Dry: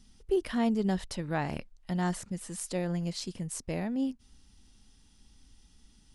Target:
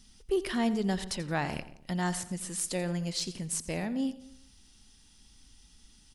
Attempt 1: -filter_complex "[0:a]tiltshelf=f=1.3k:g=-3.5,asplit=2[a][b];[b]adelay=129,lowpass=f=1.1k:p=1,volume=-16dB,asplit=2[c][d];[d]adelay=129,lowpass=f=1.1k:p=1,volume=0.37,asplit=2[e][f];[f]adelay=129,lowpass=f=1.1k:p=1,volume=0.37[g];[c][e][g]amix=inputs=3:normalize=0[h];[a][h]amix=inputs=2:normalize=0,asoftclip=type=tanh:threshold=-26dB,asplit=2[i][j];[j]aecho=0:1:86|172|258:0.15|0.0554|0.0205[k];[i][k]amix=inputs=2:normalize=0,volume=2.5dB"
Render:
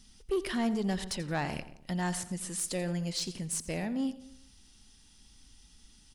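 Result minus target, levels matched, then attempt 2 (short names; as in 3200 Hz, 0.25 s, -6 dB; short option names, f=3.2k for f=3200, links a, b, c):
soft clip: distortion +11 dB
-filter_complex "[0:a]tiltshelf=f=1.3k:g=-3.5,asplit=2[a][b];[b]adelay=129,lowpass=f=1.1k:p=1,volume=-16dB,asplit=2[c][d];[d]adelay=129,lowpass=f=1.1k:p=1,volume=0.37,asplit=2[e][f];[f]adelay=129,lowpass=f=1.1k:p=1,volume=0.37[g];[c][e][g]amix=inputs=3:normalize=0[h];[a][h]amix=inputs=2:normalize=0,asoftclip=type=tanh:threshold=-18.5dB,asplit=2[i][j];[j]aecho=0:1:86|172|258:0.15|0.0554|0.0205[k];[i][k]amix=inputs=2:normalize=0,volume=2.5dB"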